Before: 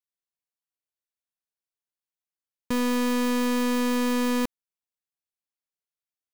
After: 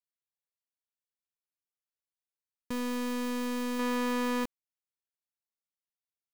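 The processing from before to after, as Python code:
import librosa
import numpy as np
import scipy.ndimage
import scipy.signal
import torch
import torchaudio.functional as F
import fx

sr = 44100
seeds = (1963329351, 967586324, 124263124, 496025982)

y = fx.peak_eq(x, sr, hz=1100.0, db=6.5, octaves=3.0, at=(3.79, 4.44))
y = y * librosa.db_to_amplitude(-8.5)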